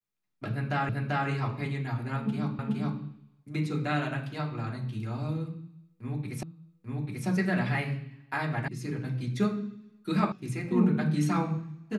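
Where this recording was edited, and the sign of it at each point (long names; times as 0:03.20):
0:00.89: the same again, the last 0.39 s
0:02.59: the same again, the last 0.42 s
0:06.43: the same again, the last 0.84 s
0:08.68: cut off before it has died away
0:10.32: cut off before it has died away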